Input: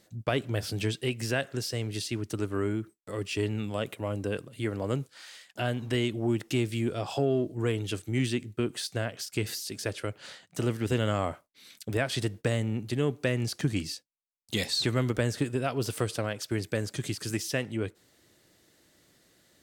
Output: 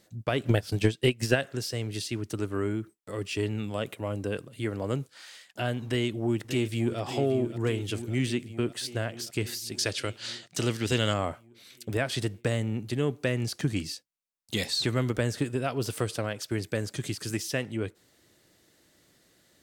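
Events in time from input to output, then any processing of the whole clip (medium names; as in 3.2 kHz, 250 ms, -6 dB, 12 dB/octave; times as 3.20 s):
0.42–1.36 s: transient shaper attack +12 dB, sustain -10 dB
5.86–6.98 s: echo throw 580 ms, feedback 70%, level -10.5 dB
9.78–11.14 s: peaking EQ 4.7 kHz +11.5 dB 2 oct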